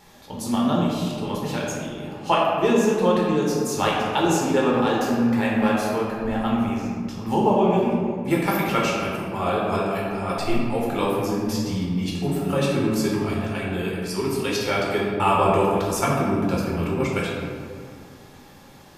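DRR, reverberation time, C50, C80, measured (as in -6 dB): -5.0 dB, 2.2 s, -0.5 dB, 1.5 dB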